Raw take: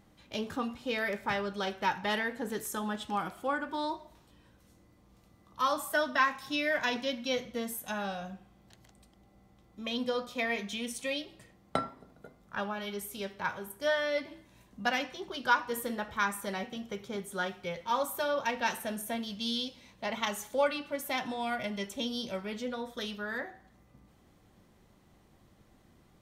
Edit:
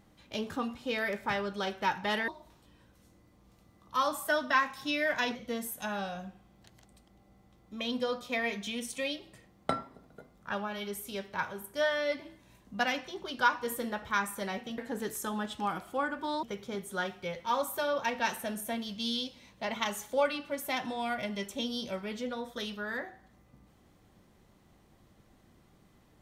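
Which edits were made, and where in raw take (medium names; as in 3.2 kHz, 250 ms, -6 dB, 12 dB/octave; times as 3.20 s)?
2.28–3.93 s: move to 16.84 s
7.00–7.41 s: delete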